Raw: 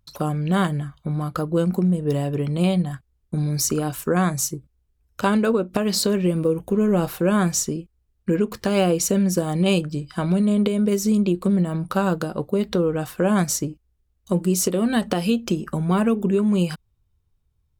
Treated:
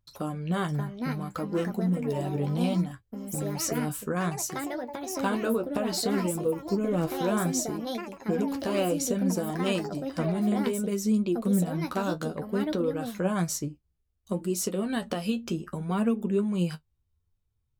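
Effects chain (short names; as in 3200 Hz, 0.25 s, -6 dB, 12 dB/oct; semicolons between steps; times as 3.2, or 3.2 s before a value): echoes that change speed 0.632 s, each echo +5 st, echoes 2, each echo -6 dB; flange 0.62 Hz, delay 8.2 ms, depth 5.8 ms, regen +39%; gain -4 dB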